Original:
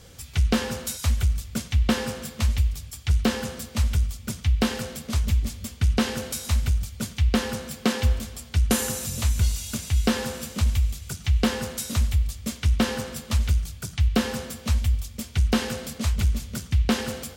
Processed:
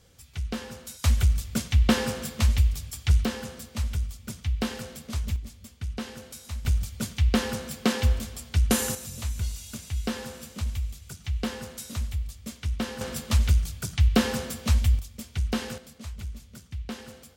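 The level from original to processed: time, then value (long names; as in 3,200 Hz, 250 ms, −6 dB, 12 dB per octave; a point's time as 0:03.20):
−10.5 dB
from 0:01.04 +1 dB
from 0:03.25 −6 dB
from 0:05.36 −12 dB
from 0:06.65 −1 dB
from 0:08.95 −8 dB
from 0:13.01 +1 dB
from 0:14.99 −6 dB
from 0:15.78 −14 dB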